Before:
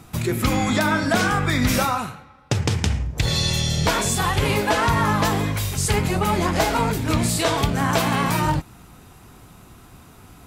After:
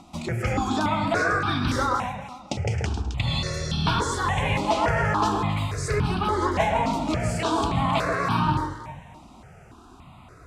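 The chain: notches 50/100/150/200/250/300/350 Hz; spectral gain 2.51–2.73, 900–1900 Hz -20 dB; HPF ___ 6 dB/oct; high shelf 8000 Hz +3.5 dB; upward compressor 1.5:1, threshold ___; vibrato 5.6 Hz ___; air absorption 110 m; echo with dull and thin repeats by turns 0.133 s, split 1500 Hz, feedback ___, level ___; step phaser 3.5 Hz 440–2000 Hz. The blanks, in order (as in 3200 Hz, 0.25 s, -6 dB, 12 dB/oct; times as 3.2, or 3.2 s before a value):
65 Hz, -37 dBFS, 18 cents, 55%, -4 dB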